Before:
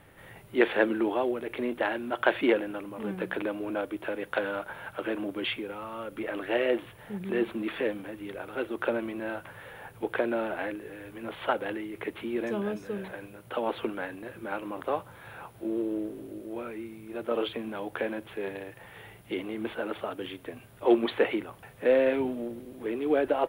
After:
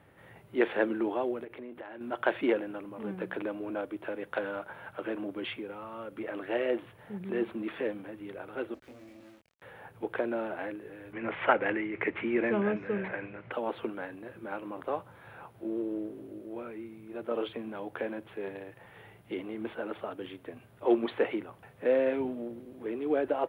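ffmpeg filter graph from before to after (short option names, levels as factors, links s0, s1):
-filter_complex "[0:a]asettb=1/sr,asplit=3[s0][s1][s2];[s0]atrim=end=1.444[s3];[s1]atrim=start=1.44:end=2.01,asetpts=PTS-STARTPTS,afade=t=in:d=0.004:c=qsin,afade=t=out:st=0.566:d=0.004:c=qsin,equalizer=f=6200:t=o:w=1.3:g=-6.5,acompressor=threshold=0.0126:ratio=4:attack=3.2:release=140:knee=1:detection=peak[s4];[s2]atrim=start=2.006[s5];[s3][s4]acrossfade=d=0.004:c1=hsin:c2=qsin[s6];[s6][s5]acrossfade=d=0.004:c1=qsin:c2=hsin,asettb=1/sr,asplit=3[s7][s8][s9];[s7]atrim=end=8.744[s10];[s8]atrim=start=8.74:end=9.62,asetpts=PTS-STARTPTS,afade=t=in:d=0.004:c=qsin,afade=t=out:st=0.876:d=0.004:c=qsin,asplit=3[s11][s12][s13];[s11]bandpass=f=270:t=q:w=8,volume=1[s14];[s12]bandpass=f=2290:t=q:w=8,volume=0.501[s15];[s13]bandpass=f=3010:t=q:w=8,volume=0.355[s16];[s14][s15][s16]amix=inputs=3:normalize=0,acrusher=bits=6:dc=4:mix=0:aa=0.000001,asplit=2[s17][s18];[s18]adelay=24,volume=0.794[s19];[s17][s19]amix=inputs=2:normalize=0,atrim=end_sample=38808[s20];[s9]atrim=start=9.616[s21];[s10][s20]acrossfade=d=0.004:c1=hsin:c2=qsin[s22];[s22][s21]acrossfade=d=0.004:c1=qsin:c2=hsin,asettb=1/sr,asplit=3[s23][s24][s25];[s23]atrim=end=11.134[s26];[s24]atrim=start=11.13:end=13.52,asetpts=PTS-STARTPTS,afade=t=in:d=0.004:c=qsin,afade=t=out:st=2.386:d=0.004:c=qsin,acontrast=36,lowpass=f=2200:t=q:w=2.9[s27];[s25]atrim=start=13.516[s28];[s26][s27]acrossfade=d=0.004:c1=hsin:c2=qsin[s29];[s29][s28]acrossfade=d=0.004:c1=qsin:c2=hsin,highpass=71,highshelf=f=3100:g=-9,volume=0.708"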